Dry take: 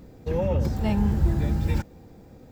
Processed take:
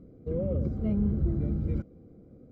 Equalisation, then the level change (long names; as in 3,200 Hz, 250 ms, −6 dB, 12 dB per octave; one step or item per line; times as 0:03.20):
moving average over 50 samples
low-shelf EQ 140 Hz −9 dB
+1.0 dB